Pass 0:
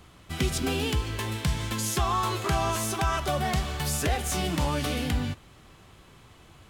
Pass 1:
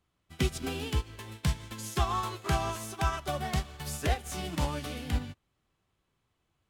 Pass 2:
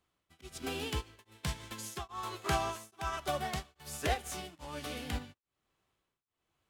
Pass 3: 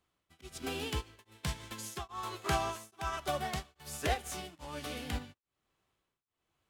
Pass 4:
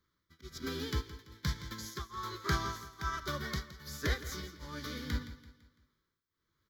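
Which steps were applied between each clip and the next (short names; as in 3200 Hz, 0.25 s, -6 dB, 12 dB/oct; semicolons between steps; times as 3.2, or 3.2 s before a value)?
upward expander 2.5:1, over -39 dBFS
tone controls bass -7 dB, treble 0 dB; beating tremolo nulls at 1.2 Hz
nothing audible
fixed phaser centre 2700 Hz, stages 6; feedback echo 0.168 s, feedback 43%, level -14.5 dB; gain +3 dB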